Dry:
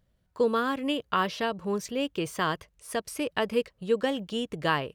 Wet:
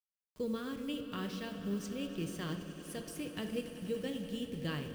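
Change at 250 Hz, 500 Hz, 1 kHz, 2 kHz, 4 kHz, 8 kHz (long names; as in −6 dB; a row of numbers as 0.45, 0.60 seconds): −6.0, −12.5, −19.5, −14.5, −10.5, −8.0 decibels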